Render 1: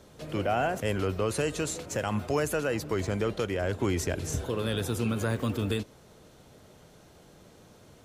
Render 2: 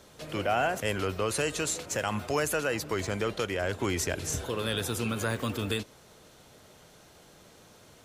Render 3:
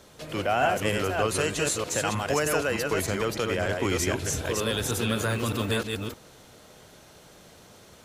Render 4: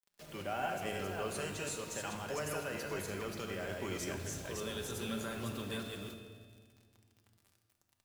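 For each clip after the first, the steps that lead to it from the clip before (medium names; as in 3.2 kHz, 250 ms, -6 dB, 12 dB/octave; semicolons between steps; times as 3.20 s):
tilt shelf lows -4 dB, about 670 Hz
chunks repeated in reverse 307 ms, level -3 dB; trim +2 dB
bit crusher 7-bit; feedback comb 85 Hz, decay 1.9 s, harmonics all, mix 70%; simulated room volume 2400 m³, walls mixed, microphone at 1.2 m; trim -5 dB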